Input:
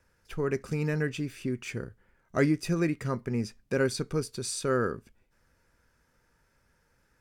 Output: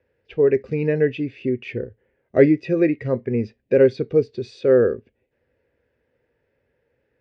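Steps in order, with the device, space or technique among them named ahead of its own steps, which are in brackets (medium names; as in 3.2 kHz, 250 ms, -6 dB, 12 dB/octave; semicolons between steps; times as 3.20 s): spectral noise reduction 7 dB; guitar cabinet (cabinet simulation 86–3600 Hz, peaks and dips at 180 Hz -10 dB, 430 Hz +4 dB, 780 Hz +9 dB, 1.3 kHz -7 dB, 1.9 kHz +6 dB, 2.7 kHz +5 dB); resonant low shelf 660 Hz +6 dB, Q 3; trim +2 dB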